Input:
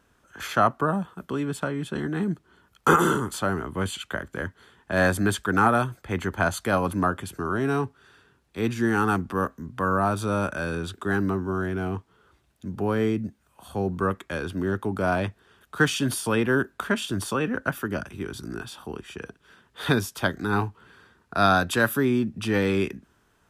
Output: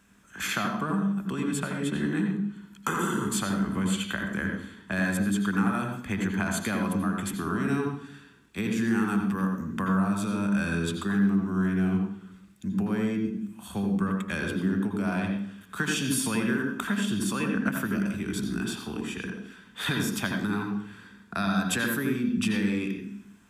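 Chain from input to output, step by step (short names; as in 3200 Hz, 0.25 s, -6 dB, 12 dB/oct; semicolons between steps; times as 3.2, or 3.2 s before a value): bell 200 Hz +12.5 dB 0.21 oct; compressor, threshold -26 dBFS, peak gain reduction 14 dB; reverb RT60 0.65 s, pre-delay 77 ms, DRR 3.5 dB; gain +3 dB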